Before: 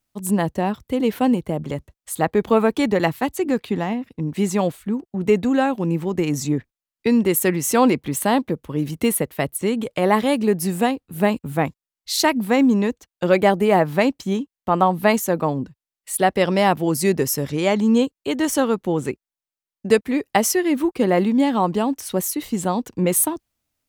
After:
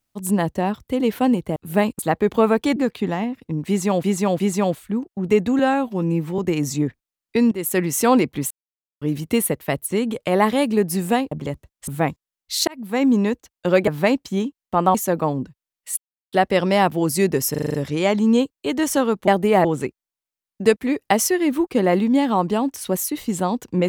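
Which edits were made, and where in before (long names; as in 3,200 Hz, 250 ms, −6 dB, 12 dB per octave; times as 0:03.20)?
0:01.56–0:02.12: swap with 0:11.02–0:11.45
0:02.89–0:03.45: remove
0:04.37–0:04.73: repeat, 3 plays
0:05.56–0:06.09: time-stretch 1.5×
0:07.22–0:07.52: fade in, from −15.5 dB
0:08.21–0:08.72: silence
0:12.25–0:12.70: fade in
0:13.45–0:13.82: move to 0:18.89
0:14.89–0:15.15: remove
0:16.18: splice in silence 0.35 s
0:17.36: stutter 0.04 s, 7 plays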